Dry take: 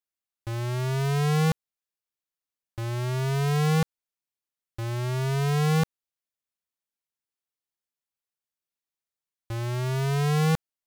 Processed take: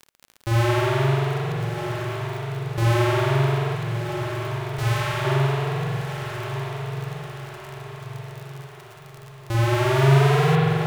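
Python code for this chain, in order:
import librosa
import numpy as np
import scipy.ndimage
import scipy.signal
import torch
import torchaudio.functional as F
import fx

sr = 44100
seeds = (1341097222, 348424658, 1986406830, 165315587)

y = fx.fade_out_tail(x, sr, length_s=1.47)
y = fx.over_compress(y, sr, threshold_db=-29.0, ratio=-0.5)
y = fx.low_shelf(y, sr, hz=150.0, db=-5.5)
y = fx.rev_spring(y, sr, rt60_s=2.5, pass_ms=(44,), chirp_ms=60, drr_db=-7.0)
y = fx.dmg_crackle(y, sr, seeds[0], per_s=54.0, level_db=-36.0)
y = fx.peak_eq(y, sr, hz=360.0, db=-12.5, octaves=1.7, at=(3.75, 5.25))
y = fx.echo_diffused(y, sr, ms=1253, feedback_pct=50, wet_db=-7)
y = y * 10.0 ** (5.5 / 20.0)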